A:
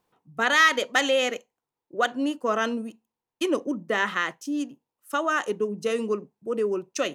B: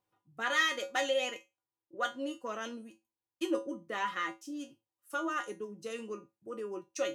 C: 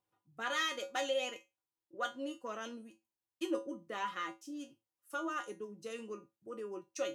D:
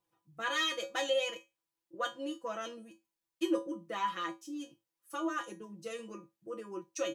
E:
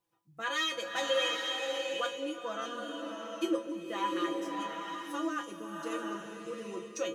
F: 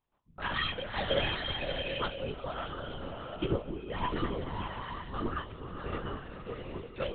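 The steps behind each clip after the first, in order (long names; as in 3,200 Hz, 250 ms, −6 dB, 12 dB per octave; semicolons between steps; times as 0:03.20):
tuned comb filter 110 Hz, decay 0.22 s, harmonics odd, mix 90%; level +1 dB
dynamic equaliser 1,900 Hz, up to −5 dB, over −49 dBFS, Q 4.5; level −3.5 dB
comb filter 6 ms, depth 100%
slow-attack reverb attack 790 ms, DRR 1 dB
linear-prediction vocoder at 8 kHz whisper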